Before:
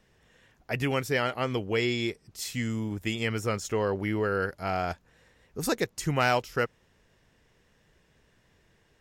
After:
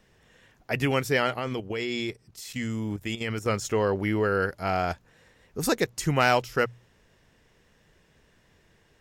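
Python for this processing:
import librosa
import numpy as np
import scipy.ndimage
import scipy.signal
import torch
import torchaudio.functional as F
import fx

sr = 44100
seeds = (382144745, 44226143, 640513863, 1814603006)

y = fx.hum_notches(x, sr, base_hz=60, count=2)
y = fx.level_steps(y, sr, step_db=11, at=(1.39, 3.46))
y = y * 10.0 ** (3.0 / 20.0)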